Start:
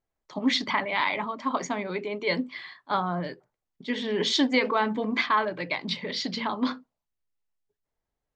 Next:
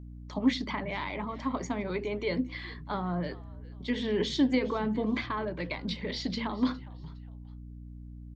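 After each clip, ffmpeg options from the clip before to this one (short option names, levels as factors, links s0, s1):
-filter_complex "[0:a]acrossover=split=460[s0][s1];[s1]acompressor=threshold=0.0141:ratio=3[s2];[s0][s2]amix=inputs=2:normalize=0,aeval=exprs='val(0)+0.00708*(sin(2*PI*60*n/s)+sin(2*PI*2*60*n/s)/2+sin(2*PI*3*60*n/s)/3+sin(2*PI*4*60*n/s)/4+sin(2*PI*5*60*n/s)/5)':c=same,asplit=3[s3][s4][s5];[s4]adelay=410,afreqshift=-98,volume=0.0944[s6];[s5]adelay=820,afreqshift=-196,volume=0.0292[s7];[s3][s6][s7]amix=inputs=3:normalize=0"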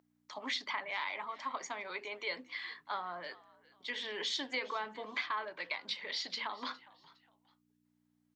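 -af "highpass=940"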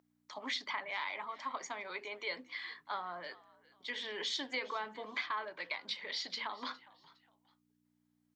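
-af "bandreject=f=2700:w=24,volume=0.891"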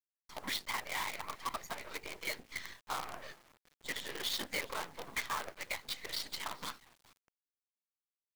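-af "afftfilt=real='hypot(re,im)*cos(2*PI*random(0))':imag='hypot(re,im)*sin(2*PI*random(1))':win_size=512:overlap=0.75,aeval=exprs='0.0335*(cos(1*acos(clip(val(0)/0.0335,-1,1)))-cos(1*PI/2))+0.00841*(cos(2*acos(clip(val(0)/0.0335,-1,1)))-cos(2*PI/2))+0.0133*(cos(5*acos(clip(val(0)/0.0335,-1,1)))-cos(5*PI/2))+0.00531*(cos(7*acos(clip(val(0)/0.0335,-1,1)))-cos(7*PI/2))':c=same,acrusher=bits=7:dc=4:mix=0:aa=0.000001,volume=1.12"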